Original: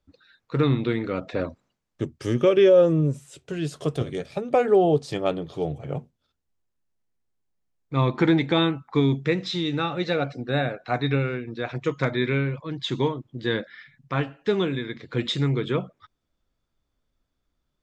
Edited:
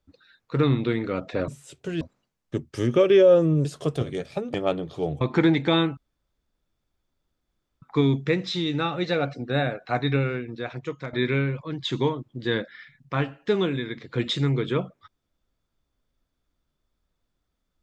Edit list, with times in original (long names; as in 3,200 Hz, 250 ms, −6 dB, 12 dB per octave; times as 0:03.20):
0:03.12–0:03.65: move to 0:01.48
0:04.54–0:05.13: remove
0:05.80–0:08.05: remove
0:08.81: splice in room tone 1.85 s
0:11.41–0:12.12: fade out, to −13 dB